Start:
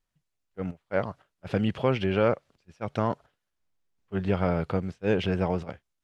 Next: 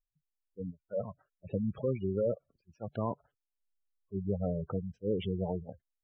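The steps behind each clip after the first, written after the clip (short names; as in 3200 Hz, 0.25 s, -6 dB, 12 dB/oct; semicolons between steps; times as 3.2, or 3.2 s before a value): spectral gate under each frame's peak -10 dB strong; gain -6 dB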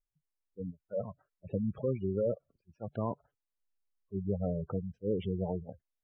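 high shelf 2500 Hz -10.5 dB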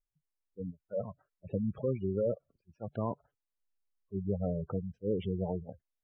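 nothing audible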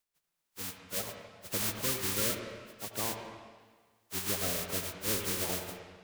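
spectral contrast lowered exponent 0.15; on a send at -4.5 dB: reverb RT60 1.5 s, pre-delay 74 ms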